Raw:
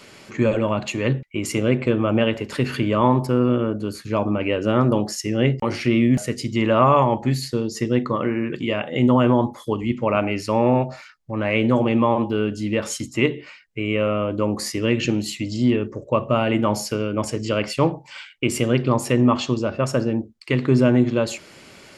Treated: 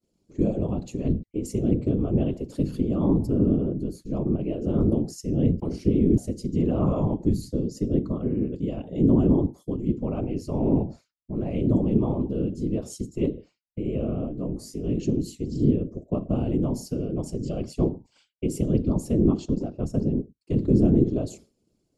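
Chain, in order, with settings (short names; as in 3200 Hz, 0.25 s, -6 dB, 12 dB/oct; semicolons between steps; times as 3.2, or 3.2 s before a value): expander -33 dBFS; EQ curve 280 Hz 0 dB, 1900 Hz -29 dB, 4000 Hz -15 dB, 6900 Hz -9 dB; 19.45–20.02 transient shaper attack -1 dB, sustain -6 dB; whisperiser; 14.28–14.93 detuned doubles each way 26 cents -> 13 cents; gain -1.5 dB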